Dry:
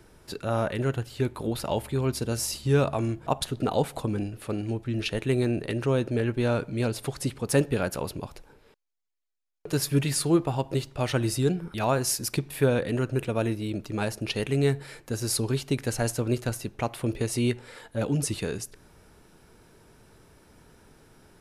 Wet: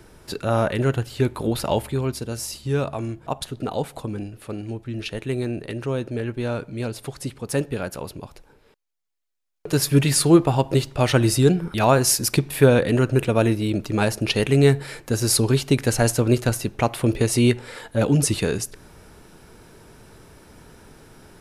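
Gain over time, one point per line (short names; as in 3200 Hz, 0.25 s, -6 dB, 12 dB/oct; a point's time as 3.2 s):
1.75 s +6 dB
2.25 s -1 dB
8.23 s -1 dB
10.23 s +8 dB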